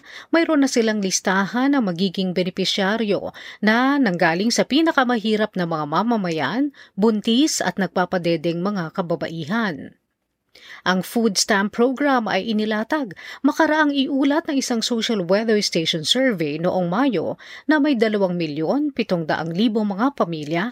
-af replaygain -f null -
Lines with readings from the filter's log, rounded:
track_gain = +0.5 dB
track_peak = 0.542